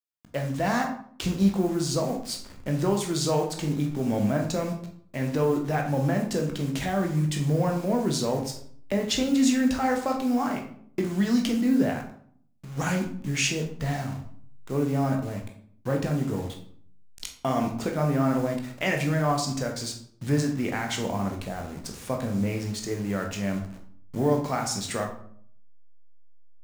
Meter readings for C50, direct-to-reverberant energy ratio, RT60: 8.0 dB, 2.0 dB, 0.60 s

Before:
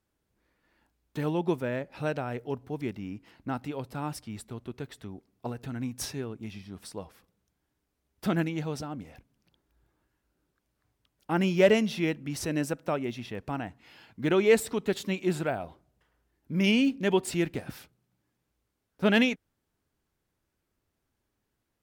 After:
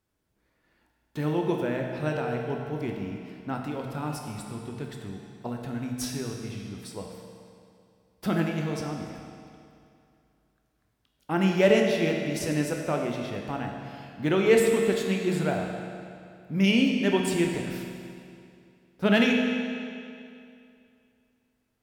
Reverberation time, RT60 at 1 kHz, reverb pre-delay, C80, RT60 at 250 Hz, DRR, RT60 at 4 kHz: 2.5 s, 2.5 s, 16 ms, 4.0 dB, 2.4 s, 1.0 dB, 2.2 s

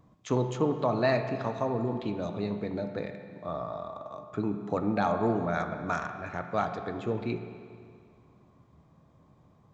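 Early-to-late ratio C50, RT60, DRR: 7.0 dB, 2.2 s, 5.5 dB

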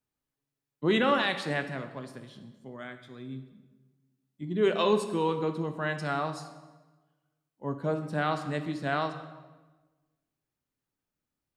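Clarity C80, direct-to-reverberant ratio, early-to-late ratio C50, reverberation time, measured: 12.0 dB, 7.5 dB, 10.0 dB, 1.3 s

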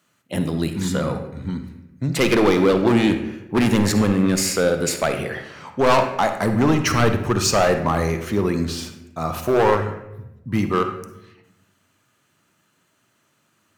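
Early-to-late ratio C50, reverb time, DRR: 7.5 dB, 0.90 s, 7.0 dB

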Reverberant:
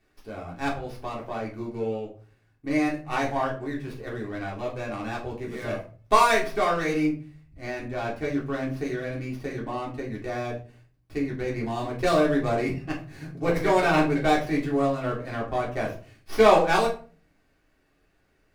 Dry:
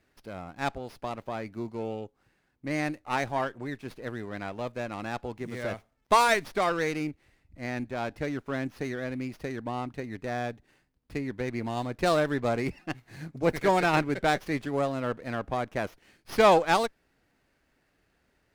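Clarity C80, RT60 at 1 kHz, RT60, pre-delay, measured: 14.5 dB, 0.35 s, 0.40 s, 3 ms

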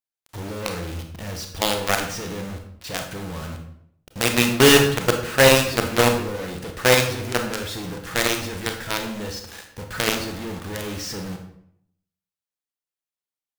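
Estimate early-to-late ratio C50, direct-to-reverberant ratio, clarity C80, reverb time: 7.0 dB, 4.0 dB, 10.0 dB, 0.70 s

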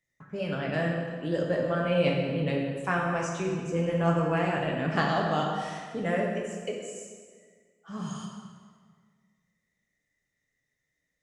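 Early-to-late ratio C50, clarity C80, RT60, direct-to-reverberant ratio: 1.5 dB, 3.5 dB, 1.7 s, −1.5 dB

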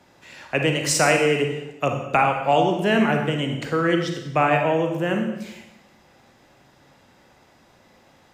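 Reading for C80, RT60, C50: 8.0 dB, 0.95 s, 5.0 dB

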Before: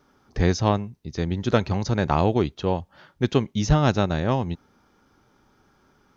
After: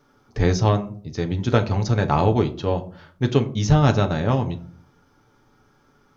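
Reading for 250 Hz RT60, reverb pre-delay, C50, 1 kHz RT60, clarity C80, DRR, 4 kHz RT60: 0.65 s, 7 ms, 16.5 dB, 0.45 s, 20.0 dB, 5.0 dB, 0.25 s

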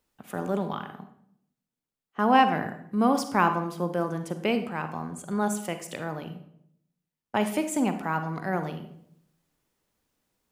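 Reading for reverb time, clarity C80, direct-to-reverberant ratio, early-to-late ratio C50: 0.70 s, 13.0 dB, 8.0 dB, 9.5 dB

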